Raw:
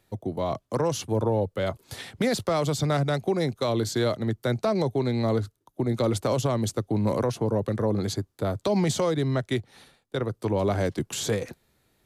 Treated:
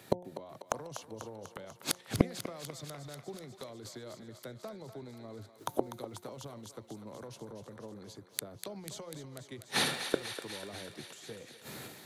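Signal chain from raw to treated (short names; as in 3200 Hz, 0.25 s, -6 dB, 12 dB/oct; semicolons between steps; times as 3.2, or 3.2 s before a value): HPF 120 Hz 24 dB/oct; transient shaper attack +7 dB, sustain +11 dB; flipped gate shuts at -25 dBFS, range -36 dB; de-hum 178.7 Hz, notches 5; on a send: thinning echo 0.246 s, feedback 74%, high-pass 650 Hz, level -9 dB; on the sum: gain +12.5 dB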